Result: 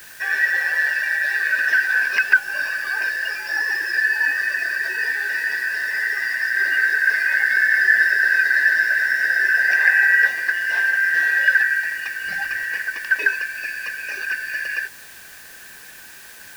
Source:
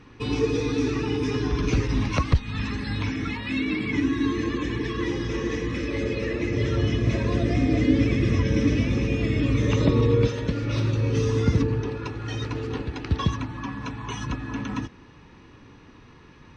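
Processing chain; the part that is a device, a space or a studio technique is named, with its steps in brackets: split-band scrambled radio (four frequency bands reordered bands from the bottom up 3142; band-pass 390–3200 Hz; white noise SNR 23 dB); 12.24–12.64 s: bass shelf 140 Hz +11.5 dB; trim +4.5 dB

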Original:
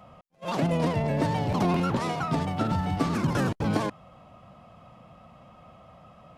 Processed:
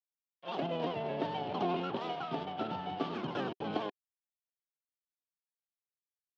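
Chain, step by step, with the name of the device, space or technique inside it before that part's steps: blown loudspeaker (crossover distortion -38.5 dBFS; cabinet simulation 220–4300 Hz, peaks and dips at 390 Hz +7 dB, 740 Hz +7 dB, 2 kHz -4 dB, 3.1 kHz +9 dB); trim -8.5 dB

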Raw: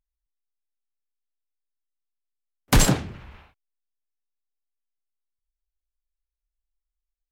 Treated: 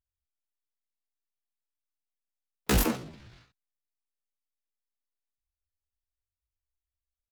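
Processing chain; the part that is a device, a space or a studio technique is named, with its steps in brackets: chipmunk voice (pitch shift +9 st); trim -7.5 dB

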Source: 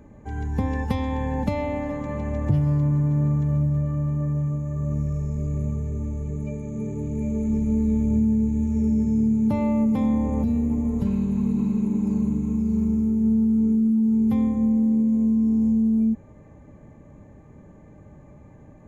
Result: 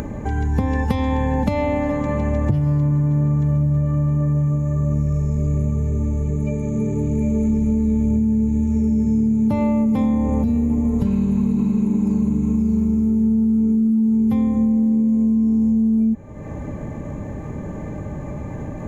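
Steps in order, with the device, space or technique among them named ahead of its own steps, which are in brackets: upward and downward compression (upward compressor, threshold -26 dBFS; compression, threshold -23 dBFS, peak gain reduction 8 dB); trim +8 dB

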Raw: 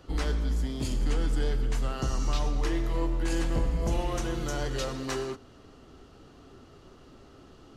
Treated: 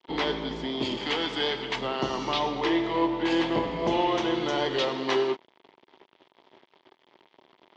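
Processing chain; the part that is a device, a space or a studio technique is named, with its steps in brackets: blown loudspeaker (crossover distortion -47.5 dBFS; cabinet simulation 220–4700 Hz, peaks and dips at 370 Hz +7 dB, 640 Hz +3 dB, 930 Hz +9 dB, 1.4 kHz -3 dB, 2.1 kHz +6 dB, 3.3 kHz +9 dB); 0.97–1.76 s: tilt shelf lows -5.5 dB, about 740 Hz; trim +5 dB

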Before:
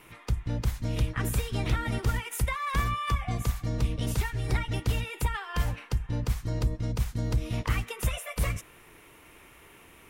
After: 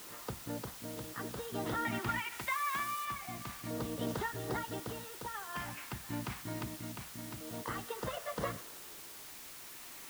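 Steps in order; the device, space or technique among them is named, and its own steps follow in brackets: shortwave radio (band-pass 260–2700 Hz; tremolo 0.48 Hz, depth 60%; LFO notch square 0.27 Hz 490–2400 Hz; white noise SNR 9 dB); 2.40–3.05 s: tone controls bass -8 dB, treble +4 dB; trim +1.5 dB

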